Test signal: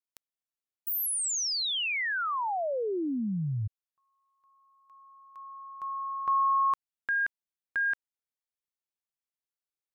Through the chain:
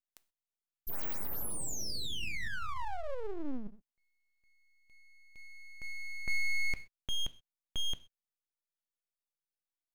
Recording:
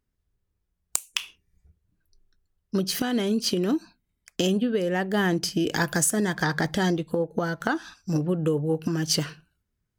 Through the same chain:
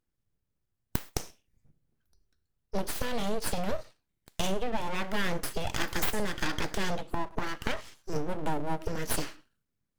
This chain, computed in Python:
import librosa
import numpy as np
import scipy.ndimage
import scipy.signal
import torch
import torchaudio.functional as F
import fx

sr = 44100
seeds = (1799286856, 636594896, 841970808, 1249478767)

y = fx.rev_gated(x, sr, seeds[0], gate_ms=150, shape='falling', drr_db=11.0)
y = np.abs(y)
y = y * 10.0 ** (-3.5 / 20.0)